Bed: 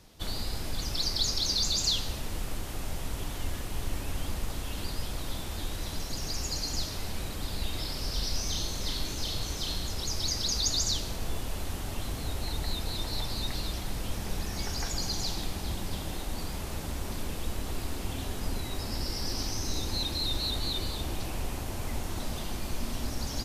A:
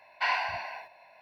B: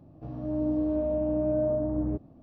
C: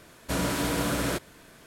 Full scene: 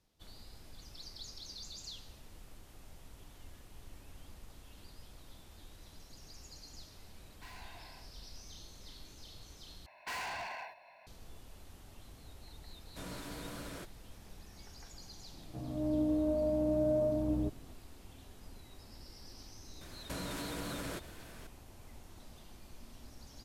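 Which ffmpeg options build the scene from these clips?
-filter_complex "[1:a]asplit=2[a][b];[3:a]asplit=2[c][d];[0:a]volume=-19.5dB[e];[a]volume=35dB,asoftclip=hard,volume=-35dB[f];[b]volume=35.5dB,asoftclip=hard,volume=-35.5dB[g];[d]acompressor=threshold=-36dB:ratio=6:attack=3.2:release=140:knee=1:detection=peak[h];[e]asplit=2[i][j];[i]atrim=end=9.864[k];[g]atrim=end=1.21,asetpts=PTS-STARTPTS,volume=-3dB[l];[j]atrim=start=11.066[m];[f]atrim=end=1.21,asetpts=PTS-STARTPTS,volume=-17dB,afade=t=in:d=0.004:c=hsin,afade=t=out:st=1.206:d=0.004:c=hsin,adelay=7210[n];[c]atrim=end=1.66,asetpts=PTS-STARTPTS,volume=-18dB,afade=t=in:d=0.004:c=hsin,afade=t=out:st=1.656:d=0.004:c=hsin,adelay=12670[o];[2:a]atrim=end=2.42,asetpts=PTS-STARTPTS,volume=-4dB,afade=t=in:d=0.004:c=hsin,afade=t=out:st=2.416:d=0.004:c=hsin,adelay=15320[p];[h]atrim=end=1.66,asetpts=PTS-STARTPTS,volume=-2dB,afade=t=in:d=0.004:c=hsin,afade=t=out:st=1.656:d=0.004:c=hsin,adelay=19810[q];[k][l]acrossfade=d=0.004:c1=hsin:c2=hsin[r];[r][m]acrossfade=d=0.004:c1=hsin:c2=hsin[s];[s][n][o][p][q]amix=inputs=5:normalize=0"

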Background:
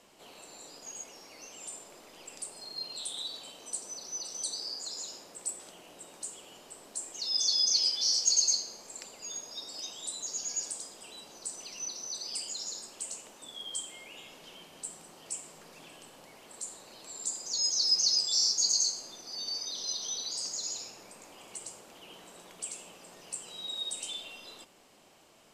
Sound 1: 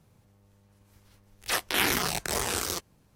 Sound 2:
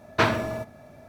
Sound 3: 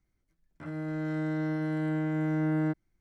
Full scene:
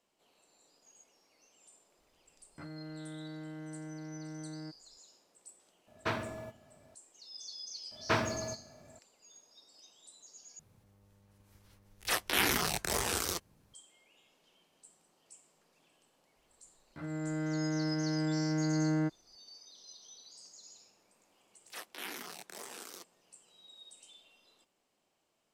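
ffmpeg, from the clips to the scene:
-filter_complex "[3:a]asplit=2[a][b];[2:a]asplit=2[c][d];[1:a]asplit=2[e][f];[0:a]volume=-18.5dB[g];[a]acompressor=threshold=-39dB:ratio=6:attack=3.2:release=140:knee=1:detection=peak[h];[f]highpass=f=200:w=0.5412,highpass=f=200:w=1.3066[i];[g]asplit=2[j][k];[j]atrim=end=10.594[l];[e]atrim=end=3.15,asetpts=PTS-STARTPTS,volume=-3.5dB[m];[k]atrim=start=13.736[n];[h]atrim=end=3,asetpts=PTS-STARTPTS,volume=-3dB,afade=t=in:d=0.004:c=hsin,afade=t=out:st=2.996:d=0.004:c=hsin,adelay=1980[o];[c]atrim=end=1.08,asetpts=PTS-STARTPTS,volume=-13dB,afade=t=in:d=0.004:c=hsin,afade=t=out:st=1.076:d=0.004:c=hsin,adelay=5870[p];[d]atrim=end=1.08,asetpts=PTS-STARTPTS,volume=-8.5dB,afade=t=in:d=0.004:c=hsin,afade=t=out:st=1.076:d=0.004:c=hsin,adelay=7910[q];[b]atrim=end=3,asetpts=PTS-STARTPTS,volume=-2.5dB,afade=t=in:d=0.004:c=hsin,afade=t=out:st=2.996:d=0.004:c=hsin,adelay=721476S[r];[i]atrim=end=3.15,asetpts=PTS-STARTPTS,volume=-17.5dB,afade=t=in:d=0.004:c=hsin,afade=t=out:st=3.146:d=0.004:c=hsin,adelay=20240[s];[l][m]acrossfade=d=0.004:c1=hsin:c2=hsin[t];[t][n]acrossfade=d=0.004:c1=hsin:c2=hsin[u];[u][o][p][q][r][s]amix=inputs=6:normalize=0"

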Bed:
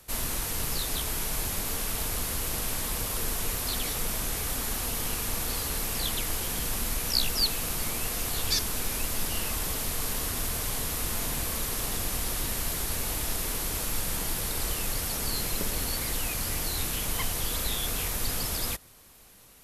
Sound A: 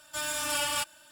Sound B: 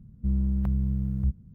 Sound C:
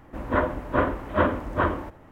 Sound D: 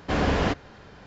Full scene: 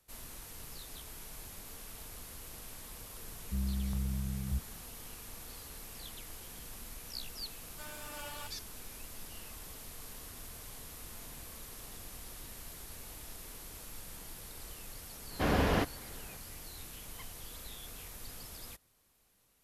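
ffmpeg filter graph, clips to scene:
-filter_complex "[0:a]volume=-17dB[a];[1:a]highshelf=f=2.6k:g=-10.5[b];[2:a]atrim=end=1.54,asetpts=PTS-STARTPTS,volume=-9dB,afade=t=in:d=0.004:c=hsin,afade=t=out:st=1.536:d=0.004:c=hsin,adelay=3280[c];[b]atrim=end=1.11,asetpts=PTS-STARTPTS,volume=-12dB,afade=t=in:d=0.004:c=hsin,afade=t=out:st=1.106:d=0.004:c=hsin,adelay=7640[d];[4:a]atrim=end=1.06,asetpts=PTS-STARTPTS,volume=-5.5dB,afade=t=in:d=0.004:c=hsin,afade=t=out:st=1.056:d=0.004:c=hsin,adelay=15310[e];[a][c][d][e]amix=inputs=4:normalize=0"

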